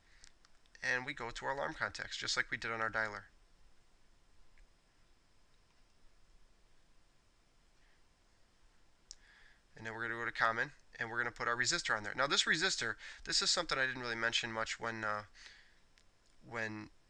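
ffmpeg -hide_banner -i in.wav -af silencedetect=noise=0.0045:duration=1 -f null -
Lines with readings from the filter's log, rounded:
silence_start: 3.20
silence_end: 9.11 | silence_duration: 5.91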